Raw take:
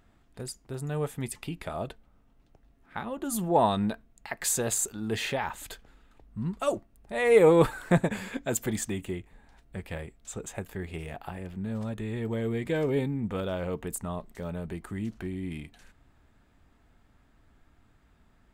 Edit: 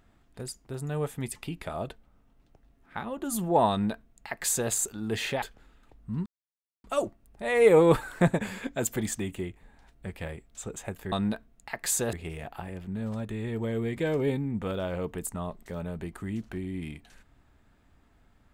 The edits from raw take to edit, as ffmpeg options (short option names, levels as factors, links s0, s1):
-filter_complex "[0:a]asplit=5[s0][s1][s2][s3][s4];[s0]atrim=end=5.422[s5];[s1]atrim=start=5.698:end=6.54,asetpts=PTS-STARTPTS,afade=t=out:st=0.838:d=0.004:c=hsin,apad=pad_dur=0.58[s6];[s2]atrim=start=6.54:end=10.822,asetpts=PTS-STARTPTS,afade=t=in:d=0.004:c=hsin[s7];[s3]atrim=start=3.698:end=4.712[s8];[s4]atrim=start=10.818[s9];[s6][s7]concat=n=2:v=0:a=1[s10];[s5][s10]acrossfade=d=0.004:c1=hsin:c2=hsin[s11];[s11][s8]acrossfade=d=0.004:c1=hsin:c2=hsin[s12];[s12][s9]acrossfade=d=0.004:c1=hsin:c2=hsin"